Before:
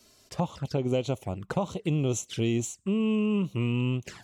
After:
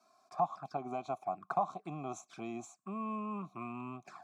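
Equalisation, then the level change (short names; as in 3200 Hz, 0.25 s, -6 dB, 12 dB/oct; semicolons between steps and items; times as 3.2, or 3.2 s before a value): vowel filter a; HPF 140 Hz 24 dB/oct; fixed phaser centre 1200 Hz, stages 4; +12.5 dB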